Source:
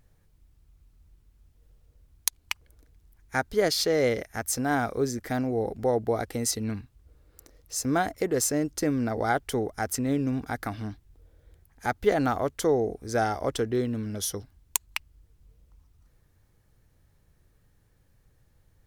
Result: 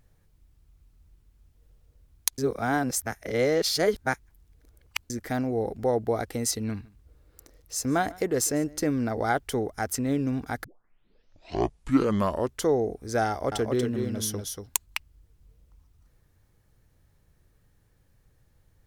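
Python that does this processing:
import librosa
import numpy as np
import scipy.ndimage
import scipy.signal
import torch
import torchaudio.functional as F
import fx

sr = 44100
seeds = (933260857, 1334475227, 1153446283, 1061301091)

y = fx.echo_single(x, sr, ms=147, db=-23.0, at=(6.7, 8.91))
y = fx.echo_single(y, sr, ms=237, db=-5.0, at=(13.28, 14.86))
y = fx.edit(y, sr, fx.reverse_span(start_s=2.38, length_s=2.72),
    fx.tape_start(start_s=10.64, length_s=2.03), tone=tone)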